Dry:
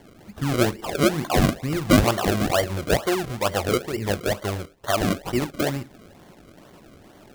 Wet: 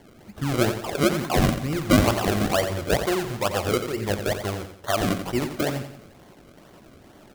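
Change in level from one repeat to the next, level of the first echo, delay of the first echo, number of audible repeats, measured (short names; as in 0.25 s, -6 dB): -7.5 dB, -9.0 dB, 88 ms, 4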